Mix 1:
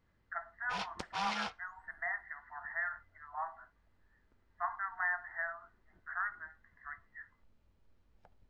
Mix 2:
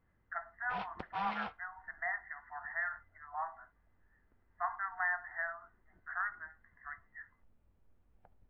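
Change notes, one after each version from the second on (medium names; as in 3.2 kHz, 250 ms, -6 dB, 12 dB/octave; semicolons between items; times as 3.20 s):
background: add distance through air 430 m; master: remove band-stop 740 Hz, Q 19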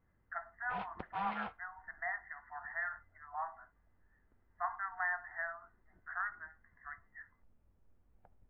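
master: add distance through air 240 m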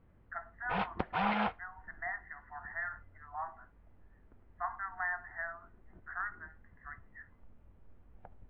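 background +11.0 dB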